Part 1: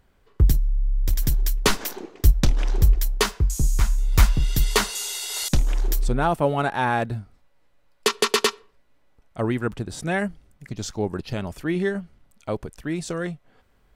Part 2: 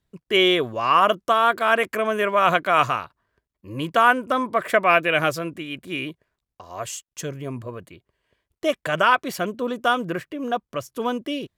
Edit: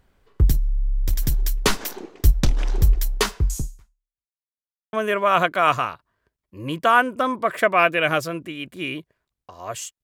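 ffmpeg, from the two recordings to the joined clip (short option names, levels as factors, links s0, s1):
-filter_complex "[0:a]apad=whole_dur=10.03,atrim=end=10.03,asplit=2[s0][s1];[s0]atrim=end=4.28,asetpts=PTS-STARTPTS,afade=t=out:st=3.58:d=0.7:c=exp[s2];[s1]atrim=start=4.28:end=4.93,asetpts=PTS-STARTPTS,volume=0[s3];[1:a]atrim=start=2.04:end=7.14,asetpts=PTS-STARTPTS,afade=t=in:d=0.004:c=hsin[s4];[s2][s3][s4]concat=n=3:v=0:a=1"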